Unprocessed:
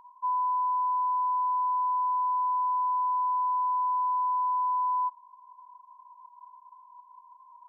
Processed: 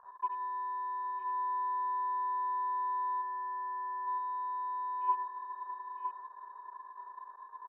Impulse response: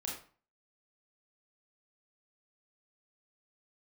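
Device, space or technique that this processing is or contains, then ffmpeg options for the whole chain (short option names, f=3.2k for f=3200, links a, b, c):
microphone above a desk: -filter_complex "[0:a]aecho=1:1:1.7:0.84[a];[1:a]atrim=start_sample=2205[b];[a][b]afir=irnorm=-1:irlink=0,asplit=3[c][d][e];[c]afade=t=out:st=3.21:d=0.02[f];[d]highpass=980,afade=t=in:st=3.21:d=0.02,afade=t=out:st=4.06:d=0.02[g];[e]afade=t=in:st=4.06:d=0.02[h];[f][g][h]amix=inputs=3:normalize=0,afwtdn=0.00398,tiltshelf=f=970:g=7.5,aecho=1:1:963:0.473,volume=4dB"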